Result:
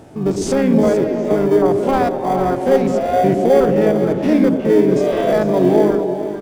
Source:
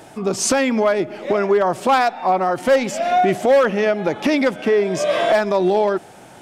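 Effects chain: stepped spectrum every 50 ms; in parallel at -11 dB: sample-and-hold 33×; on the sum: echo 0.452 s -11 dB; harmoniser -5 st -7 dB; tilt shelf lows +6 dB, about 670 Hz; on a send: delay with a stepping band-pass 0.11 s, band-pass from 290 Hz, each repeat 0.7 oct, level -3 dB; on the sum: gain -1.5 dB

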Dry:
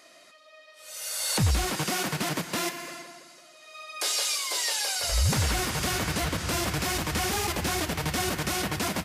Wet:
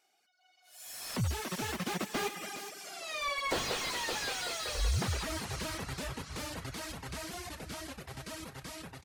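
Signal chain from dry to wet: Doppler pass-by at 3.13, 53 m/s, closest 12 m; de-hum 146.9 Hz, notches 28; reverb removal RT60 0.79 s; AGC gain up to 7 dB; echo 0.412 s -13.5 dB; slew limiter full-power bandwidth 37 Hz; gain +5 dB

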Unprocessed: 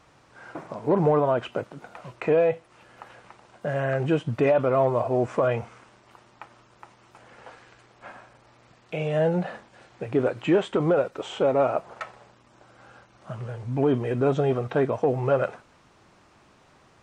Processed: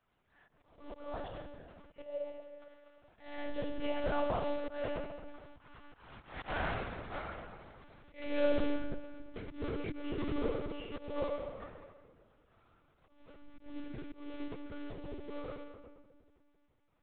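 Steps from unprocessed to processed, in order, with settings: block floating point 3-bit; Doppler pass-by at 6.54, 45 m/s, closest 5.3 m; shoebox room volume 2000 m³, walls mixed, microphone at 2.3 m; auto swell 0.221 s; monotone LPC vocoder at 8 kHz 290 Hz; gain +12.5 dB

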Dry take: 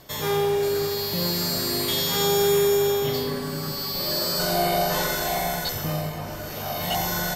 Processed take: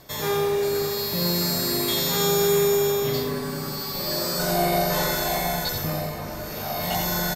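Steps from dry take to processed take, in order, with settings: notch 3000 Hz, Q 11; echo 86 ms -7.5 dB

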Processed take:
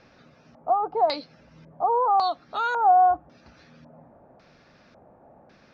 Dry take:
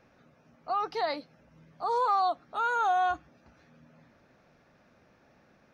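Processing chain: 0.75–1.19 notch 1900 Hz, Q 7.5; in parallel at +1 dB: compressor, threshold -37 dBFS, peak gain reduction 14 dB; on the sum: LFO low-pass square 0.91 Hz 780–4800 Hz

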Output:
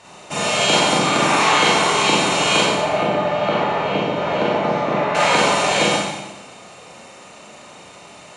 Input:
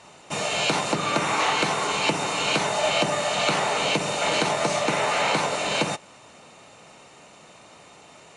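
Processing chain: 2.61–5.15 tape spacing loss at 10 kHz 38 dB; Schroeder reverb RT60 1.1 s, combs from 31 ms, DRR -4.5 dB; gain +2 dB

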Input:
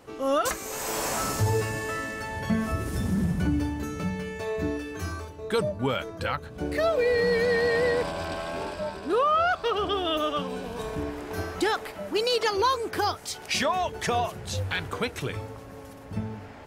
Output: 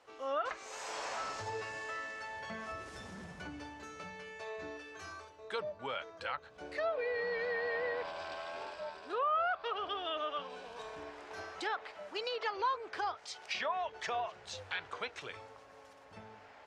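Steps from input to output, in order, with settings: three-band isolator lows -18 dB, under 490 Hz, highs -19 dB, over 7600 Hz; treble ducked by the level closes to 2400 Hz, closed at -23 dBFS; gain -8 dB

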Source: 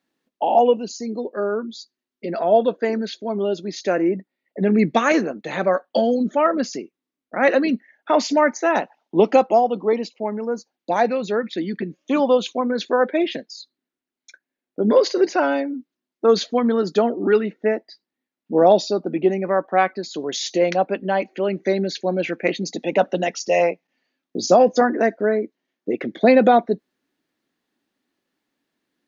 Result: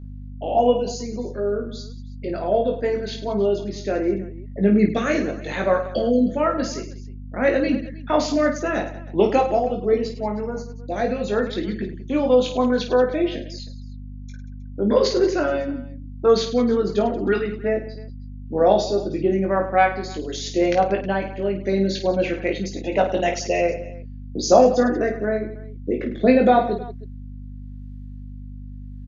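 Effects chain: rotary speaker horn 0.85 Hz; hum 50 Hz, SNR 15 dB; reverse bouncing-ball echo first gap 20 ms, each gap 1.6×, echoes 5; gain -1 dB

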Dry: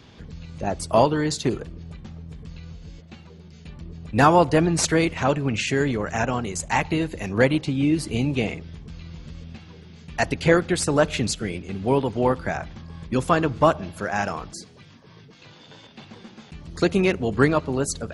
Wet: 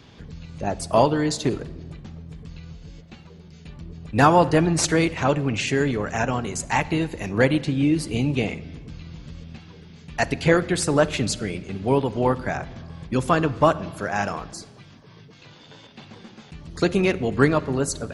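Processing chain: shoebox room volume 1800 m³, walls mixed, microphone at 0.32 m

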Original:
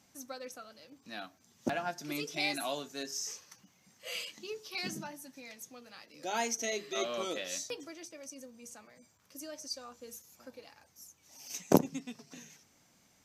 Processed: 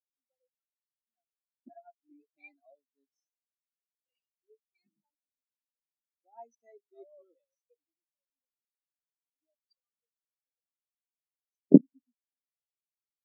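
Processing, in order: spectral expander 4:1; gain +7 dB

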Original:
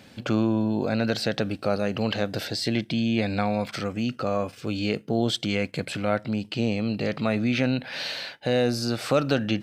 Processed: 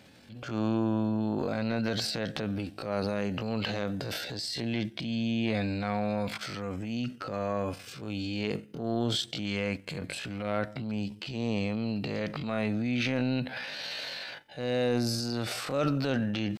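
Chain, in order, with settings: transient shaper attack -8 dB, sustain +7 dB; tempo 0.58×; gain -5 dB

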